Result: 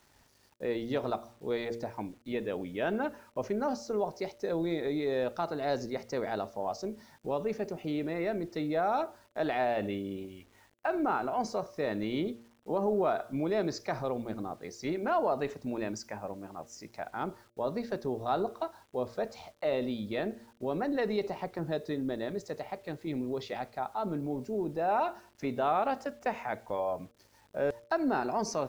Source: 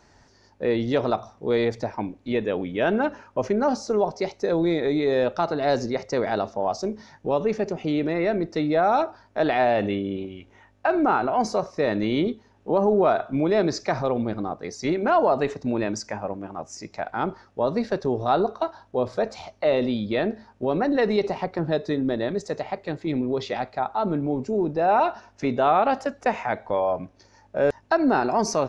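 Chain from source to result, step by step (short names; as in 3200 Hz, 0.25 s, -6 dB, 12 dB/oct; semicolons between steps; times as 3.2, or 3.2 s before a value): bit-crush 9-bit; de-hum 116.7 Hz, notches 5; gain -9 dB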